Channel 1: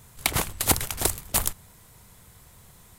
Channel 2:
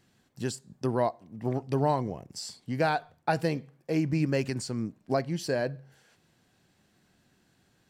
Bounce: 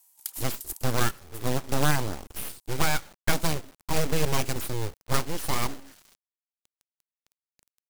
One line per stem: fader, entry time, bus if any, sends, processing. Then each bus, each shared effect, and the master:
-8.0 dB, 0.00 s, no send, ring modulator 880 Hz; pre-emphasis filter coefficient 0.97; auto duck -18 dB, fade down 1.35 s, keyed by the second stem
+2.5 dB, 0.00 s, no send, full-wave rectifier; companded quantiser 4-bit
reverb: none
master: tone controls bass +3 dB, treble +5 dB

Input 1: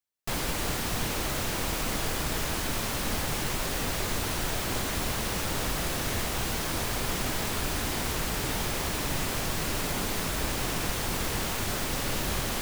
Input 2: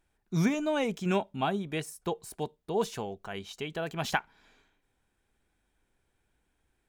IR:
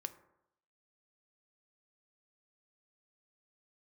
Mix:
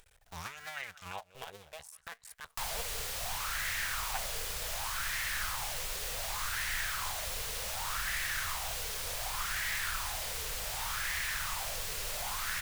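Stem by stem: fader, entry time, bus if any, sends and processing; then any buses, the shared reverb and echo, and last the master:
-3.5 dB, 2.30 s, no send, no echo send, none
-6.5 dB, 0.00 s, no send, echo send -23.5 dB, cycle switcher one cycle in 2, muted; upward expansion 1.5:1, over -40 dBFS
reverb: none
echo: feedback delay 193 ms, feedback 18%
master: amplifier tone stack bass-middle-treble 10-0-10; upward compressor, threshold -39 dBFS; sweeping bell 0.67 Hz 440–1900 Hz +15 dB

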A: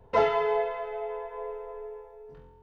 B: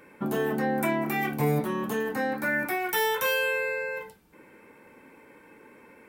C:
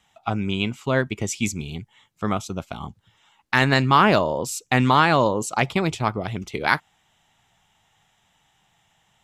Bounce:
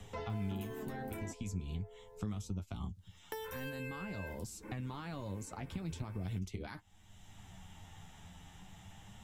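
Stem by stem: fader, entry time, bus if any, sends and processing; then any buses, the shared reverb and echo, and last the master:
1.47 s -19.5 dB -> 1.74 s -13 dB, 0.00 s, no bus, no send, none
+0.5 dB, 0.30 s, muted 1.32–3.32 s, bus A, no send, peak limiter -24.5 dBFS, peak gain reduction 10.5 dB
-11.0 dB, 0.00 s, bus A, no send, bass shelf 270 Hz +10 dB; peak limiter -14 dBFS, peak gain reduction 11.5 dB
bus A: 0.0 dB, peaking EQ 130 Hz -10 dB 0.98 oct; compression 5:1, threshold -42 dBFS, peak gain reduction 13.5 dB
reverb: none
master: tone controls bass +14 dB, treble +6 dB; flange 0.43 Hz, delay 9.4 ms, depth 2.4 ms, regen +34%; three bands compressed up and down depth 70%

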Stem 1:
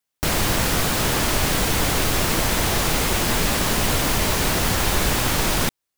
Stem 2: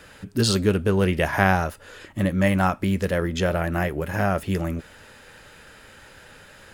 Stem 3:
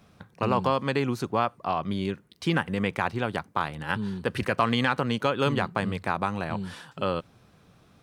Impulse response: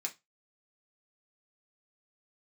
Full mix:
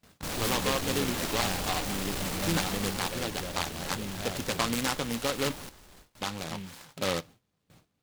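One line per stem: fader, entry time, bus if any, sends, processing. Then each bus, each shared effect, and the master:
2.67 s -10 dB -> 3.39 s -18.5 dB, 0.00 s, send -5 dB, echo send -10 dB, treble shelf 9.7 kHz -9.5 dB; saturation -22 dBFS, distortion -10 dB
-17.0 dB, 0.00 s, no send, no echo send, treble shelf 2.1 kHz +7.5 dB
0.0 dB, 0.00 s, muted 5.52–6.21 s, send -12 dB, no echo send, auto duck -8 dB, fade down 0.40 s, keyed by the second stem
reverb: on, RT60 0.20 s, pre-delay 3 ms
echo: delay 933 ms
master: gate with hold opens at -45 dBFS; delay time shaken by noise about 2.5 kHz, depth 0.14 ms

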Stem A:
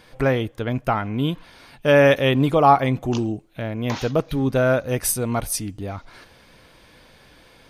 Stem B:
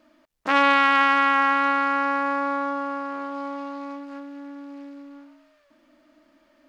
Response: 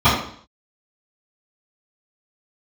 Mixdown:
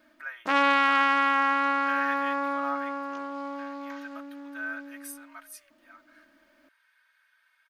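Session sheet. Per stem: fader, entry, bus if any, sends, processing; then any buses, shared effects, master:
-3.5 dB, 0.00 s, no send, ladder high-pass 1.4 kHz, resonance 65%; peaking EQ 4.7 kHz -11.5 dB 3 oct; comb 3.2 ms, depth 86%
-4.0 dB, 0.00 s, no send, treble shelf 11 kHz +8 dB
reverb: none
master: none

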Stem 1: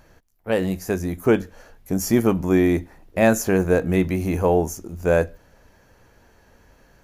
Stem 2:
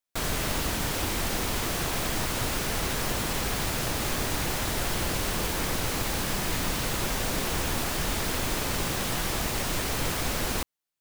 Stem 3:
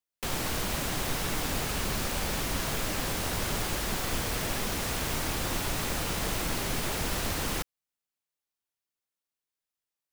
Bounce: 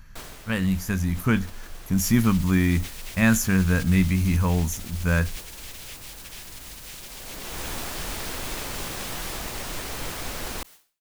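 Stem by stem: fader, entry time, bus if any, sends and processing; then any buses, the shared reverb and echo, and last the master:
+1.0 dB, 0.00 s, no send, high-order bell 500 Hz -15.5 dB
-3.5 dB, 0.00 s, no send, bass shelf 190 Hz -8.5 dB; auto duck -14 dB, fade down 0.45 s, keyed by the first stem
-15.5 dB, 1.75 s, no send, spectral gate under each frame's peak -20 dB weak; resonant high shelf 1.6 kHz +10 dB, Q 1.5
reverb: none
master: bass shelf 67 Hz +11 dB; decay stretcher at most 150 dB/s

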